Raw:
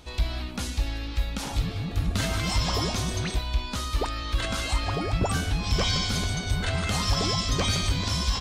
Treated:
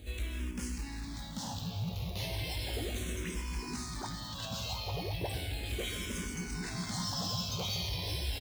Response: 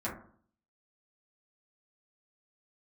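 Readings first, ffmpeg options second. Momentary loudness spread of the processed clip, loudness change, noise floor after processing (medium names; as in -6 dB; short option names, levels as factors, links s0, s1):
6 LU, -9.5 dB, -43 dBFS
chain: -filter_complex "[0:a]acrossover=split=190[s0][s1];[s0]acompressor=threshold=0.0251:ratio=6[s2];[s2][s1]amix=inputs=2:normalize=0,equalizer=f=1300:w=3.5:g=-11.5,aecho=1:1:858:0.335,asplit=2[s3][s4];[1:a]atrim=start_sample=2205[s5];[s4][s5]afir=irnorm=-1:irlink=0,volume=0.0631[s6];[s3][s6]amix=inputs=2:normalize=0,aeval=exprs='val(0)+0.00708*(sin(2*PI*50*n/s)+sin(2*PI*2*50*n/s)/2+sin(2*PI*3*50*n/s)/3+sin(2*PI*4*50*n/s)/4+sin(2*PI*5*50*n/s)/5)':c=same,bandreject=f=670:w=17,asoftclip=type=tanh:threshold=0.0355,asplit=2[s7][s8];[s8]adelay=17,volume=0.376[s9];[s7][s9]amix=inputs=2:normalize=0,acrusher=bits=3:mode=log:mix=0:aa=0.000001,highpass=58,lowshelf=f=160:g=6,asplit=2[s10][s11];[s11]afreqshift=-0.35[s12];[s10][s12]amix=inputs=2:normalize=1,volume=0.708"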